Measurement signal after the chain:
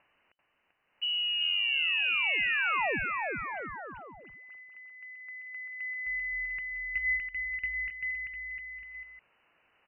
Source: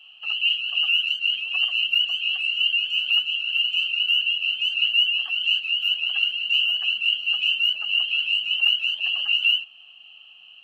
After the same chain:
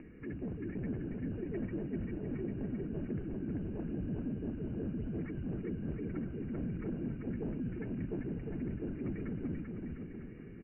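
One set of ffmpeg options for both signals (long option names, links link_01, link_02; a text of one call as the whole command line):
ffmpeg -i in.wav -filter_complex "[0:a]acompressor=mode=upward:threshold=-28dB:ratio=2.5,volume=22.5dB,asoftclip=hard,volume=-22.5dB,asplit=2[link_01][link_02];[link_02]aecho=0:1:390|702|951.6|1151|1311:0.631|0.398|0.251|0.158|0.1[link_03];[link_01][link_03]amix=inputs=2:normalize=0,lowpass=frequency=2600:width_type=q:width=0.5098,lowpass=frequency=2600:width_type=q:width=0.6013,lowpass=frequency=2600:width_type=q:width=0.9,lowpass=frequency=2600:width_type=q:width=2.563,afreqshift=-3000,volume=-7dB" out.wav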